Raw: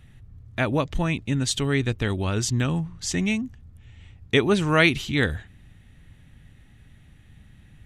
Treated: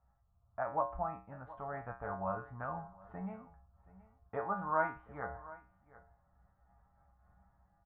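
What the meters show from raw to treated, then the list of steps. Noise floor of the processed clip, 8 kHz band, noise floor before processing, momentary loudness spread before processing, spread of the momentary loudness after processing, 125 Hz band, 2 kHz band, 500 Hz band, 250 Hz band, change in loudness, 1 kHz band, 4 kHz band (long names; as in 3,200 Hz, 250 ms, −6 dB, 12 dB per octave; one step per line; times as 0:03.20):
−73 dBFS, below −40 dB, −53 dBFS, 9 LU, 16 LU, −23.5 dB, −19.0 dB, −13.5 dB, −23.0 dB, −16.0 dB, −4.5 dB, below −40 dB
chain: elliptic low-pass filter 1,300 Hz, stop band 80 dB
low shelf with overshoot 510 Hz −12 dB, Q 3
automatic gain control gain up to 7.5 dB
tuned comb filter 63 Hz, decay 0.37 s, harmonics odd, mix 90%
single-tap delay 724 ms −20 dB
amplitude modulation by smooth noise, depth 50%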